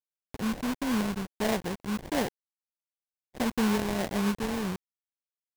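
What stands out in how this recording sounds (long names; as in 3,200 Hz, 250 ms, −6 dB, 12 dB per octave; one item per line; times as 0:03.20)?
a quantiser's noise floor 6 bits, dither none
phaser sweep stages 12, 1.5 Hz, lowest notch 620–1,500 Hz
aliases and images of a low sample rate 1,300 Hz, jitter 20%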